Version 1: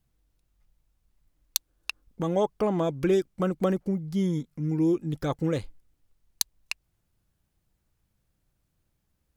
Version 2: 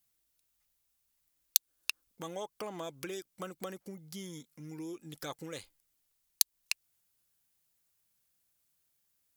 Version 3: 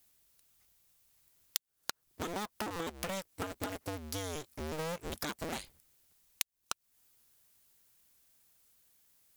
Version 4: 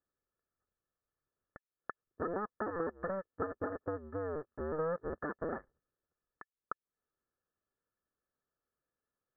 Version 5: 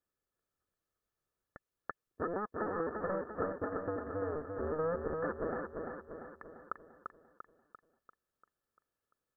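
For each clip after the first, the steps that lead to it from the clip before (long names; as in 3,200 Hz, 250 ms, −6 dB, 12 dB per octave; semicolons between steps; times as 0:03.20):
downward compressor 6 to 1, threshold −26 dBFS, peak gain reduction 7.5 dB; spectral tilt +4 dB per octave; level −6.5 dB
sub-harmonics by changed cycles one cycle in 2, inverted; downward compressor 4 to 1, threshold −44 dBFS, peak gain reduction 21 dB; level +8.5 dB
leveller curve on the samples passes 2; Chebyshev low-pass with heavy ripple 1,800 Hz, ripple 9 dB; level −1.5 dB
repeating echo 344 ms, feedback 52%, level −4.5 dB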